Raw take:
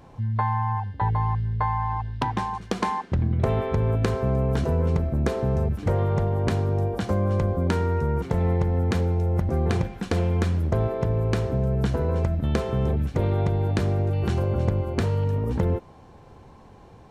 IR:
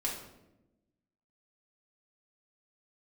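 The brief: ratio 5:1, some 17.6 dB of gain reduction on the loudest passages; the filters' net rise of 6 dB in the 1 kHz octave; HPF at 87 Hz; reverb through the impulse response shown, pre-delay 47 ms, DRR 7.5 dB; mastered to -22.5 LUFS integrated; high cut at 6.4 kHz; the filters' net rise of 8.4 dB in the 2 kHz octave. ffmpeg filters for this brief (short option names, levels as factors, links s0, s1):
-filter_complex "[0:a]highpass=87,lowpass=6400,equalizer=f=1000:t=o:g=5,equalizer=f=2000:t=o:g=9,acompressor=threshold=0.0112:ratio=5,asplit=2[s0][s1];[1:a]atrim=start_sample=2205,adelay=47[s2];[s1][s2]afir=irnorm=-1:irlink=0,volume=0.266[s3];[s0][s3]amix=inputs=2:normalize=0,volume=7.94"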